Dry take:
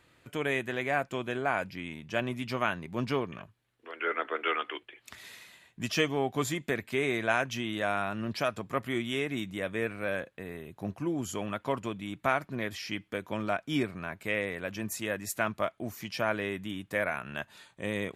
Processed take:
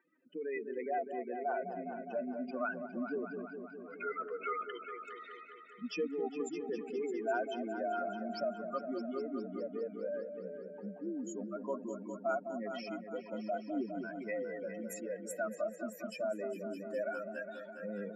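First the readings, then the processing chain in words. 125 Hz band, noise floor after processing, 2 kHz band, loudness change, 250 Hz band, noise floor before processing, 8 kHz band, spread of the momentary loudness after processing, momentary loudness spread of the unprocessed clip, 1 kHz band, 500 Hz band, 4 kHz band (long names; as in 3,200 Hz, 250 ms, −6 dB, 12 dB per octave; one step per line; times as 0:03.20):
below −15 dB, −52 dBFS, −12.5 dB, −7.0 dB, −5.5 dB, −69 dBFS, −10.0 dB, 8 LU, 10 LU, −6.0 dB, −3.5 dB, −16.0 dB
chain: expanding power law on the bin magnitudes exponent 3.6
Chebyshev high-pass with heavy ripple 180 Hz, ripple 3 dB
echo whose low-pass opens from repeat to repeat 205 ms, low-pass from 750 Hz, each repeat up 2 octaves, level −6 dB
level −5 dB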